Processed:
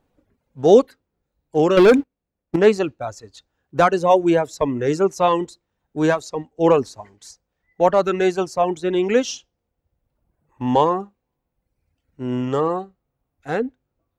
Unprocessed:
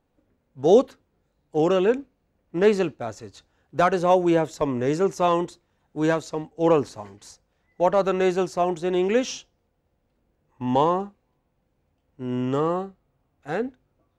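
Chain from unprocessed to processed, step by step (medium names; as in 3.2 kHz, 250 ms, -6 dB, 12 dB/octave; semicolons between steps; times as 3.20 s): 1.77–2.56 s: waveshaping leveller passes 3; reverb removal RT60 1.3 s; trim +4.5 dB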